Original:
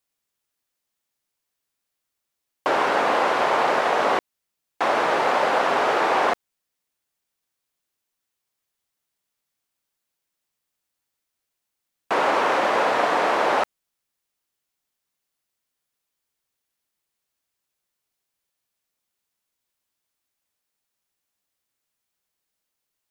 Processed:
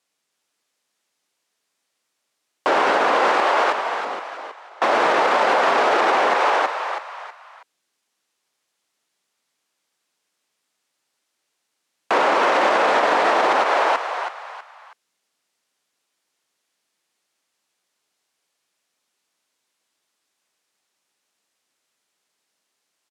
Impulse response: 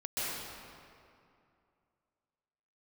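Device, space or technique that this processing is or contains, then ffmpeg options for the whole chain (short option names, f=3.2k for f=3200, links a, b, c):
stacked limiters: -filter_complex "[0:a]lowpass=8.8k,asettb=1/sr,asplit=3[a][b][c];[a]atrim=end=3.404[d];[b]atrim=start=3.4:end=4.82,asetpts=PTS-STARTPTS,afade=t=in:d=0.004:c=qsin,afade=t=out:st=1.416:d=0.004:c=qsin,agate=range=-33dB:threshold=-8dB:ratio=3:detection=peak[e];[c]atrim=start=4.816[f];[d][e]acrossfade=d=0.004:c1=hsin:c2=qsin[g];[g][f]acrossfade=d=0.004:c1=qsin:c2=hsin,highpass=200,asplit=5[h][i][j][k][l];[i]adelay=323,afreqshift=67,volume=-5dB[m];[j]adelay=646,afreqshift=134,volume=-14.4dB[n];[k]adelay=969,afreqshift=201,volume=-23.7dB[o];[l]adelay=1292,afreqshift=268,volume=-33.1dB[p];[h][m][n][o][p]amix=inputs=5:normalize=0,alimiter=limit=-13dB:level=0:latency=1:release=93,alimiter=limit=-17dB:level=0:latency=1:release=42,volume=8dB"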